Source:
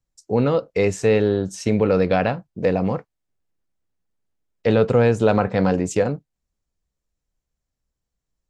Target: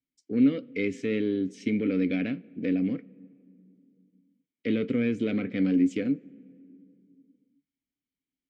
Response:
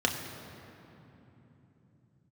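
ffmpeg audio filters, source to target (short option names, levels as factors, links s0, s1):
-filter_complex "[0:a]acontrast=81,asplit=3[s0][s1][s2];[s0]bandpass=f=270:t=q:w=8,volume=1[s3];[s1]bandpass=f=2290:t=q:w=8,volume=0.501[s4];[s2]bandpass=f=3010:t=q:w=8,volume=0.355[s5];[s3][s4][s5]amix=inputs=3:normalize=0,asplit=2[s6][s7];[1:a]atrim=start_sample=2205,asetrate=66150,aresample=44100,lowshelf=f=220:g=-9.5[s8];[s7][s8]afir=irnorm=-1:irlink=0,volume=0.0501[s9];[s6][s9]amix=inputs=2:normalize=0"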